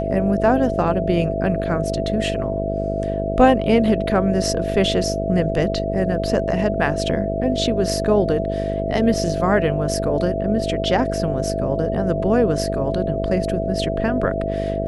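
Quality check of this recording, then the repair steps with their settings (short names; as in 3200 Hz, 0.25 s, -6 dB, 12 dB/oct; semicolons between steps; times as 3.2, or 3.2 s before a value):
buzz 50 Hz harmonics 14 -25 dBFS
tone 660 Hz -24 dBFS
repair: de-hum 50 Hz, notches 14; notch 660 Hz, Q 30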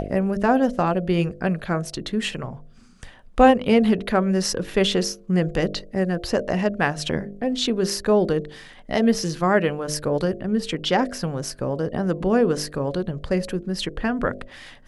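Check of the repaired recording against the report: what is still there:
none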